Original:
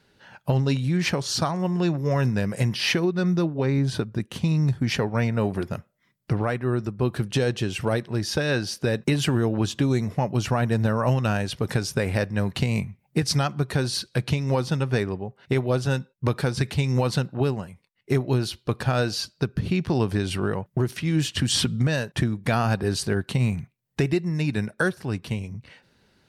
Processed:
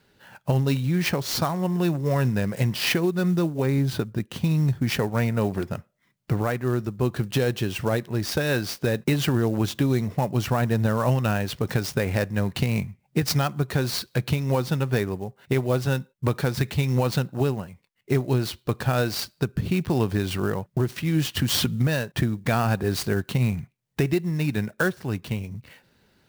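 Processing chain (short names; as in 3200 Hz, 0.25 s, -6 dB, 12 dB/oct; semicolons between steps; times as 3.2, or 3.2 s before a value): clock jitter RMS 0.02 ms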